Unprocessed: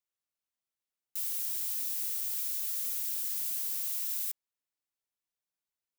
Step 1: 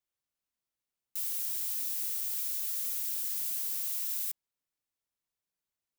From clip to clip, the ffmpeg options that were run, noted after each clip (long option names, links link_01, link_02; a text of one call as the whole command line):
ffmpeg -i in.wav -af "lowshelf=frequency=320:gain=5.5" out.wav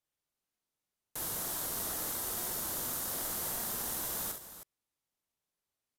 ffmpeg -i in.wav -filter_complex "[0:a]asplit=2[link_01][link_02];[link_02]acrusher=samples=17:mix=1:aa=0.000001,volume=-12dB[link_03];[link_01][link_03]amix=inputs=2:normalize=0,aecho=1:1:44|66|316:0.398|0.355|0.266,aresample=32000,aresample=44100" out.wav